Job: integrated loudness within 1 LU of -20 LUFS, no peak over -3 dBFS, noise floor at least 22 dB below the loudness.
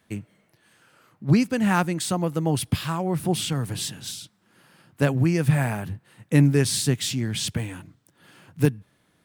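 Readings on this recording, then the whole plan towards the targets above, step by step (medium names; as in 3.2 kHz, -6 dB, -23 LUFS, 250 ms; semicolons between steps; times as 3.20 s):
loudness -24.0 LUFS; peak level -5.5 dBFS; loudness target -20.0 LUFS
-> trim +4 dB; peak limiter -3 dBFS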